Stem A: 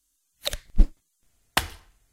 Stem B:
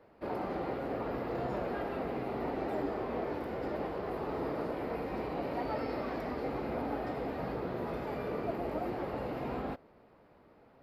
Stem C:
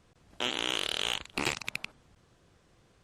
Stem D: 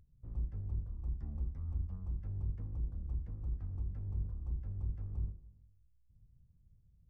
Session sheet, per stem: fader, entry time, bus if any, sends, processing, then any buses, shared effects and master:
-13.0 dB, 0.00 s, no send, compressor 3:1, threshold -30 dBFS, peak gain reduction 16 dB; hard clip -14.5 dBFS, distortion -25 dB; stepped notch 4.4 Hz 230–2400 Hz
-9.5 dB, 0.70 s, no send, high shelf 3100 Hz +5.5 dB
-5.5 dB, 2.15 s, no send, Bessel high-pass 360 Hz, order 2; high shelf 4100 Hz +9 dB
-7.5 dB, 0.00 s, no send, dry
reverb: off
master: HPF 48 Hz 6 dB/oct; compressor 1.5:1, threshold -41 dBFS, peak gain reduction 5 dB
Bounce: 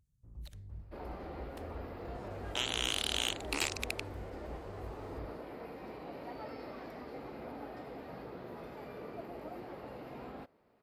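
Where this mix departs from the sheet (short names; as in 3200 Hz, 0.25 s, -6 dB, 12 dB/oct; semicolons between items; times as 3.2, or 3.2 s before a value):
stem A -13.0 dB -> -24.0 dB; master: missing compressor 1.5:1, threshold -41 dBFS, peak gain reduction 5 dB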